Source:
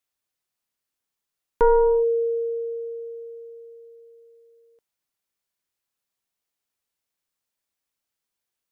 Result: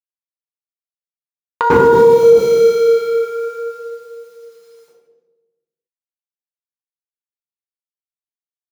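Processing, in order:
mu-law and A-law mismatch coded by A
high-pass filter 54 Hz 6 dB per octave, from 0:02.23 370 Hz
low-shelf EQ 130 Hz −11.5 dB
comb filter 5.7 ms, depth 37%
downward compressor 10 to 1, threshold −28 dBFS, peak gain reduction 12 dB
flanger 0.47 Hz, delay 3.6 ms, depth 8.8 ms, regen +64%
convolution reverb RT60 1.2 s, pre-delay 94 ms, DRR −6.5 dB
boost into a limiter +19.5 dB
level −1 dB

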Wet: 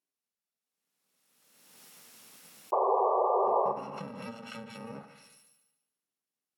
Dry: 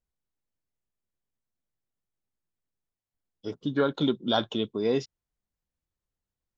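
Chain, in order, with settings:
samples in bit-reversed order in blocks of 128 samples
sound drawn into the spectrogram noise, 0:02.72–0:03.72, 370–1,200 Hz −24 dBFS
high-pass filter 190 Hz 24 dB per octave
brickwall limiter −17 dBFS, peak gain reduction 5.5 dB
delay with a high-pass on its return 145 ms, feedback 34%, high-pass 2,200 Hz, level −8 dB
spring reverb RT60 1 s, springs 42/54 ms, chirp 40 ms, DRR 8.5 dB
treble cut that deepens with the level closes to 980 Hz, closed at −24.5 dBFS
background raised ahead of every attack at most 32 dB per second

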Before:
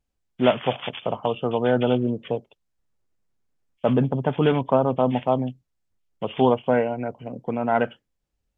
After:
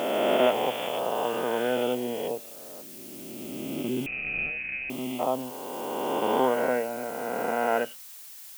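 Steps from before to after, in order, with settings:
peak hold with a rise ahead of every peak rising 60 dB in 2.91 s
high-pass filter 260 Hz 12 dB per octave
0:02.81–0:05.19: gain on a spectral selection 400–2,000 Hz −18 dB
background noise blue −38 dBFS
0:04.06–0:04.90: voice inversion scrambler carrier 2,800 Hz
level −7 dB

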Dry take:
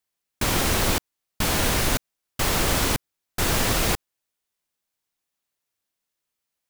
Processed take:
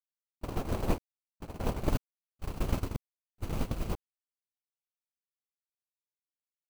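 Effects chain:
running median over 25 samples
high-shelf EQ 12,000 Hz +7 dB
noise gate −22 dBFS, range −40 dB
0:01.89–0:03.93: parametric band 630 Hz −6 dB 2.2 octaves
level +1 dB

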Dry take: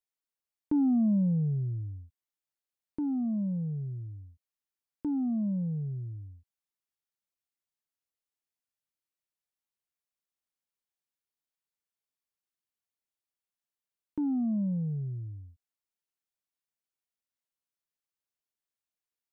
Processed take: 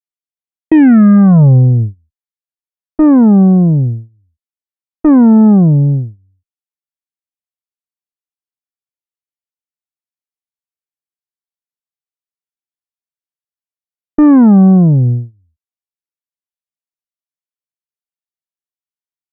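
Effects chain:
tape wow and flutter 120 cents
harmonic generator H 6 −20 dB, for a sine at −21.5 dBFS
noise gate −36 dBFS, range −32 dB
boost into a limiter +25 dB
level −1 dB

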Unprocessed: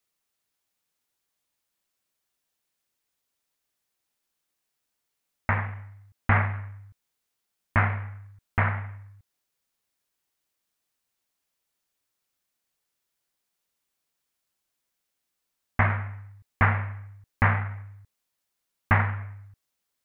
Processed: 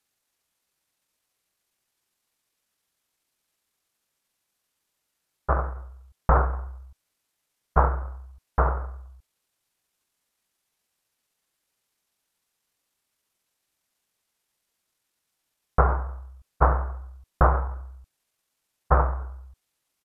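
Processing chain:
pitch shifter −7.5 semitones
level +3 dB

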